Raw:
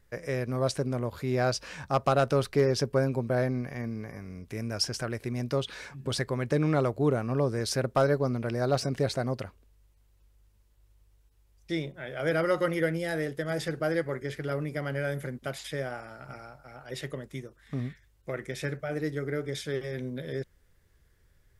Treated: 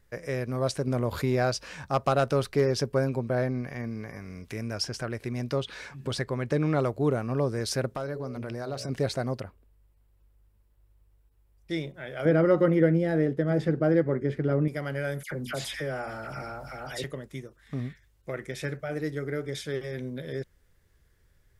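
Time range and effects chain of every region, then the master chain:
0.87–1.46 transient shaper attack +5 dB, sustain -2 dB + fast leveller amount 50%
3.08–6.79 high shelf 6200 Hz -6 dB + mismatched tape noise reduction encoder only
7.88–8.89 de-hum 61.95 Hz, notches 10 + compressor 3:1, threshold -32 dBFS
9.4–11.71 bell 5500 Hz -9 dB 2.4 oct + notch 6300 Hz
12.25–14.68 LPF 1600 Hz 6 dB/oct + bell 230 Hz +10.5 dB 2.2 oct
15.23–17.04 notches 60/120/180/240 Hz + dispersion lows, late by 83 ms, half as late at 1800 Hz + fast leveller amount 50%
whole clip: dry

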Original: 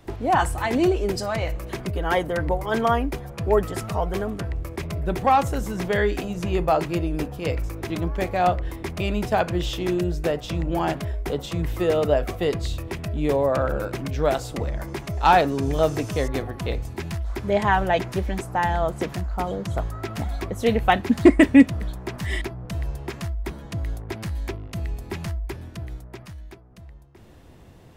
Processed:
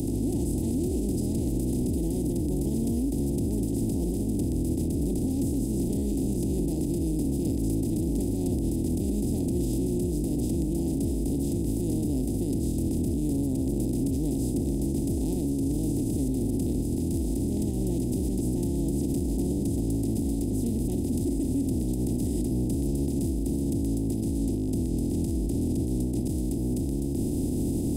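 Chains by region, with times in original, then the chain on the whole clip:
24.22–26.28 air absorption 51 m + fast leveller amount 100%
whole clip: per-bin compression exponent 0.2; Chebyshev band-stop 170–9600 Hz, order 2; limiter -16 dBFS; gain -3.5 dB

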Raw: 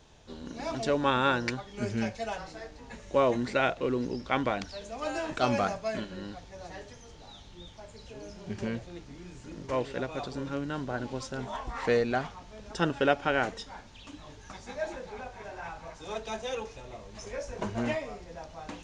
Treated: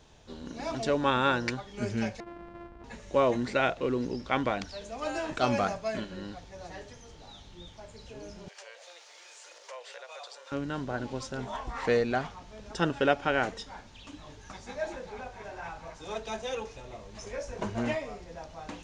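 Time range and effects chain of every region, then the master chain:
2.2–2.84 sample sorter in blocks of 128 samples + LPF 1500 Hz + compressor 10:1, threshold -40 dBFS
8.48–10.52 high shelf 2400 Hz +9.5 dB + compressor 5:1, threshold -39 dBFS + elliptic high-pass 520 Hz, stop band 60 dB
whole clip: dry

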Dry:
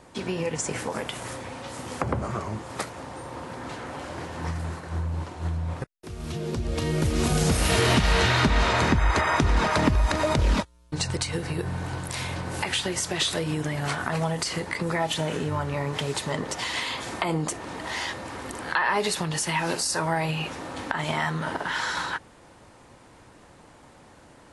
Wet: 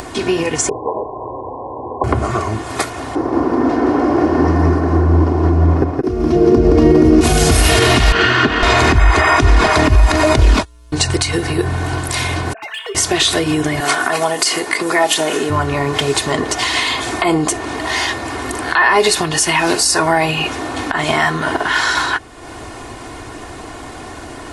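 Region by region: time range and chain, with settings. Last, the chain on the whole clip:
0.69–2.04 brick-wall FIR low-pass 1100 Hz + resonant low shelf 340 Hz -8.5 dB, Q 1.5 + notch 690 Hz, Q 7.7
3.15–7.21 EQ curve 110 Hz 0 dB, 280 Hz +13 dB, 630 Hz +6 dB, 1200 Hz +2 dB, 3700 Hz -12 dB, 5300 Hz -4 dB, 7700 Hz -16 dB + echo 0.17 s -3.5 dB
8.12–8.63 minimum comb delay 0.65 ms + BPF 170–3000 Hz
12.53–12.95 sine-wave speech + hard clip -24 dBFS + resonator 220 Hz, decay 0.96 s, mix 80%
13.8–15.5 HPF 270 Hz + high shelf 8300 Hz +9 dB
whole clip: comb 2.8 ms, depth 59%; upward compressor, threshold -33 dBFS; maximiser +12.5 dB; gain -1 dB

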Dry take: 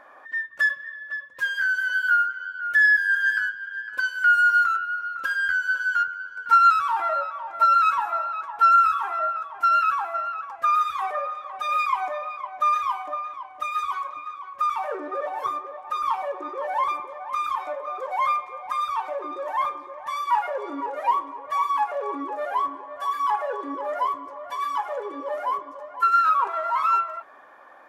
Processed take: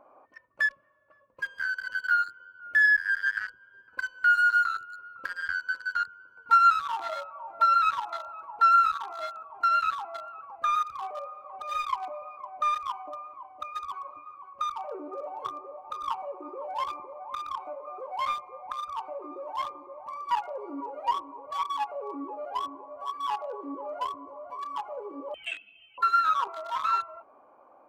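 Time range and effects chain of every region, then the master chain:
25.34–25.98 dynamic EQ 2000 Hz, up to +4 dB, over -43 dBFS, Q 1.7 + inverted band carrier 3700 Hz
whole clip: Wiener smoothing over 25 samples; dynamic EQ 540 Hz, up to -4 dB, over -37 dBFS, Q 1; gain -2 dB

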